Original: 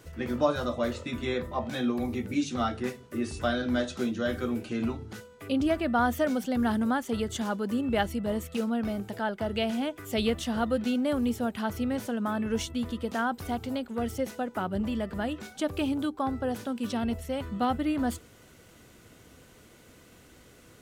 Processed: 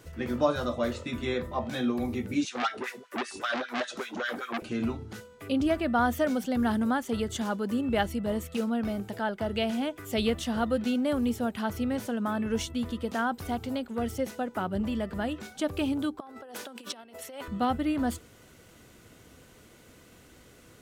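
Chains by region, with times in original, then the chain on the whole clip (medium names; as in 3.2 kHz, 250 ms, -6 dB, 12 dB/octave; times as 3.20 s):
2.45–4.62 s: LFO high-pass sine 5.1 Hz 220–2000 Hz + transformer saturation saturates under 2.4 kHz
16.20–17.48 s: compressor with a negative ratio -35 dBFS, ratio -0.5 + high-pass 450 Hz
whole clip: none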